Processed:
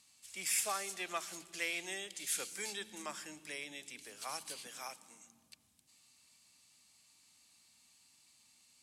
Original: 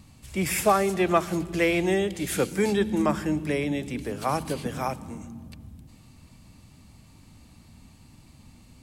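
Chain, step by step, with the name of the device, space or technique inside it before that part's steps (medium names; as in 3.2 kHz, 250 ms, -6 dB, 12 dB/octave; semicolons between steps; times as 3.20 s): 4.67–5.26 s: high-pass 150 Hz; piezo pickup straight into a mixer (low-pass 8.2 kHz 12 dB/octave; differentiator)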